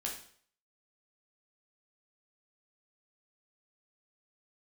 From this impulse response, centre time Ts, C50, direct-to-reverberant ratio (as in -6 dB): 28 ms, 6.0 dB, -2.0 dB